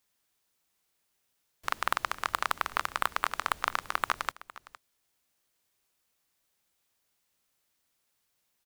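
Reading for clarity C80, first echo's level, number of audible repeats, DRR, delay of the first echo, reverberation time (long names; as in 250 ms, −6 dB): no reverb audible, −18.5 dB, 1, no reverb audible, 461 ms, no reverb audible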